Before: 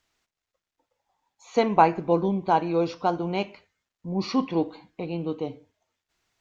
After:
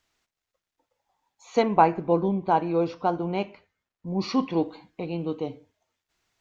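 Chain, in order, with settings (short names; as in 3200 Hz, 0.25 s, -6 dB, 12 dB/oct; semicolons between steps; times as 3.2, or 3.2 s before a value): 1.62–4.07 high shelf 3500 Hz -10 dB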